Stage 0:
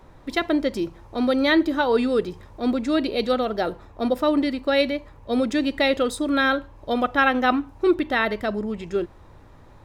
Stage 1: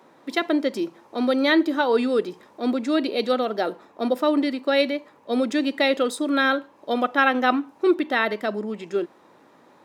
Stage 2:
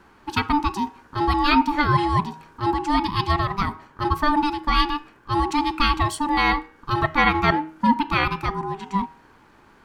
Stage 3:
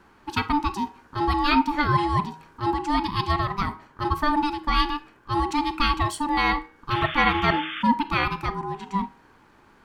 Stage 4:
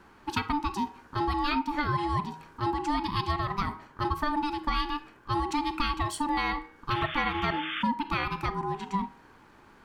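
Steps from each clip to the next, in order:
high-pass filter 210 Hz 24 dB per octave
ring modulation 590 Hz; hum removal 158.4 Hz, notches 19; level +4 dB
sound drawn into the spectrogram noise, 0:06.90–0:07.83, 1,100–3,600 Hz −31 dBFS; on a send at −16.5 dB: convolution reverb, pre-delay 33 ms; on the sum: level −2.5 dB
downward compressor 4 to 1, threshold −25 dBFS, peak gain reduction 10 dB

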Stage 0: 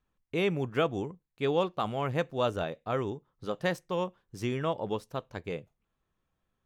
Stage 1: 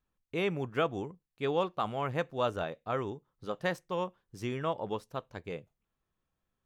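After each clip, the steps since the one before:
dynamic equaliser 1,200 Hz, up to +4 dB, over −39 dBFS, Q 0.7
level −4 dB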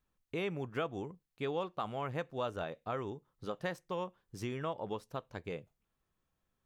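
downward compressor 2 to 1, threshold −39 dBFS, peak gain reduction 8.5 dB
level +1 dB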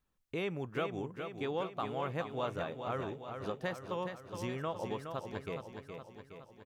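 repeating echo 417 ms, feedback 58%, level −7 dB

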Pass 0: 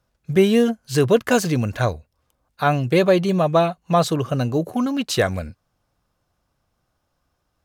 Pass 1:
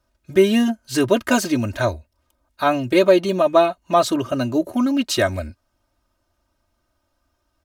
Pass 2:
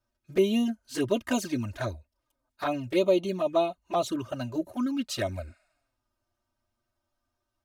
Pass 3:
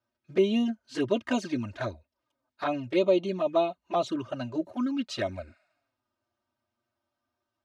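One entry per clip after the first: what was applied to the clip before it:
comb filter 3.2 ms, depth 88%; level −1 dB
healed spectral selection 0:05.50–0:05.95, 560–12,000 Hz both; flanger swept by the level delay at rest 8.5 ms, full sweep at −13 dBFS; level −8 dB
band-pass filter 120–4,700 Hz

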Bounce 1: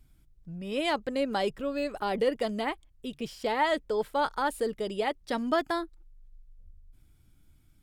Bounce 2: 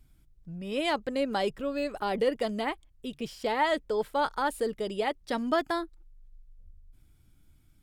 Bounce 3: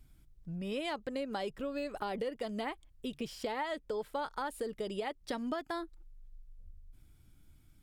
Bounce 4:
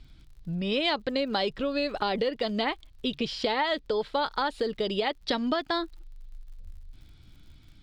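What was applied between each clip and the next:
no processing that can be heard
downward compressor, threshold −34 dBFS, peak gain reduction 12.5 dB
low-pass with resonance 4,100 Hz, resonance Q 2.9; surface crackle 69 per second −58 dBFS; level +8.5 dB

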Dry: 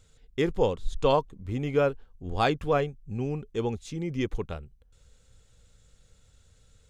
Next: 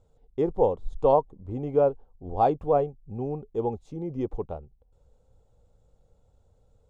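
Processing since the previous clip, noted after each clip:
drawn EQ curve 200 Hz 0 dB, 820 Hz +9 dB, 1,700 Hz −15 dB
level −3 dB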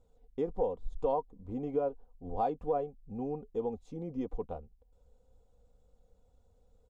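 comb filter 4.1 ms, depth 56%
downward compressor 2 to 1, threshold −27 dBFS, peak gain reduction 7.5 dB
level −5 dB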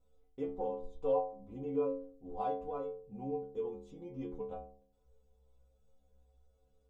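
stiff-string resonator 65 Hz, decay 0.78 s, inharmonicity 0.008
level +8 dB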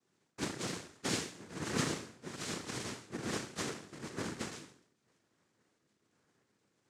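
samples in bit-reversed order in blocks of 64 samples
asymmetric clip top −32.5 dBFS
cochlear-implant simulation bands 3
level +5 dB

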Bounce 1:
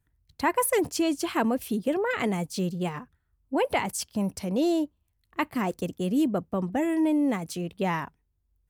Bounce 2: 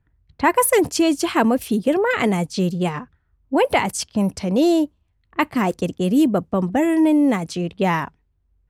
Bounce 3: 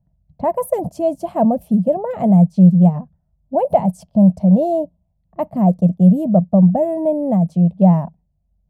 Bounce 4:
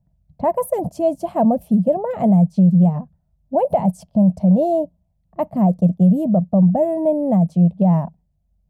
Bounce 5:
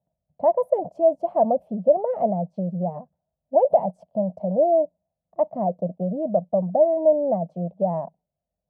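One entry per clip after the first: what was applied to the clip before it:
low-pass that shuts in the quiet parts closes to 2,200 Hz, open at −23.5 dBFS; level +8 dB
drawn EQ curve 110 Hz 0 dB, 180 Hz +15 dB, 280 Hz −6 dB, 420 Hz −9 dB, 630 Hz +11 dB, 1,400 Hz −21 dB, 2,300 Hz −23 dB, 4,400 Hz −22 dB, 7,400 Hz −19 dB, 14,000 Hz −10 dB; level −1 dB
brickwall limiter −7.5 dBFS, peak gain reduction 6 dB
resonant band-pass 600 Hz, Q 2.2; level +1.5 dB

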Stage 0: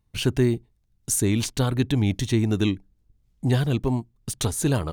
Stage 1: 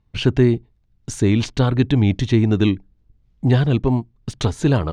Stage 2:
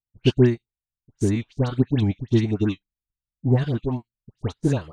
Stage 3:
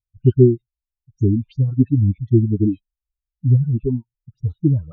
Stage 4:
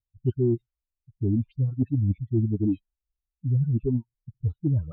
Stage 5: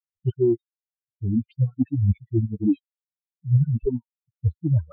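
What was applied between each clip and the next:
high-frequency loss of the air 150 metres; level +6 dB
all-pass dispersion highs, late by 97 ms, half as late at 1,500 Hz; expander for the loud parts 2.5 to 1, over −35 dBFS
expanding power law on the bin magnitudes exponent 3.1; level +5.5 dB
low-pass that shuts in the quiet parts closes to 350 Hz, open at −12.5 dBFS; reversed playback; downward compressor 6 to 1, threshold −21 dBFS, peak gain reduction 14 dB; reversed playback
spectral dynamics exaggerated over time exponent 3; level +8 dB

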